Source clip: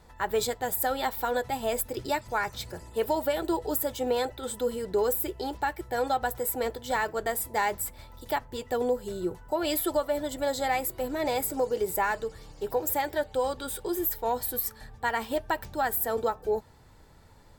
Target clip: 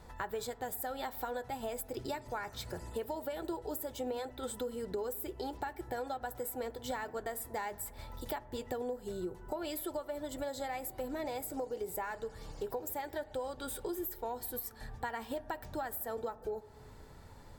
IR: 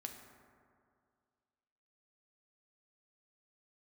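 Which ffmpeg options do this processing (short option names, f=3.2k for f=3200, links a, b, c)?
-filter_complex "[0:a]acompressor=threshold=-38dB:ratio=6,asplit=2[a][b];[1:a]atrim=start_sample=2205,lowpass=2.1k[c];[b][c]afir=irnorm=-1:irlink=0,volume=-7.5dB[d];[a][d]amix=inputs=2:normalize=0"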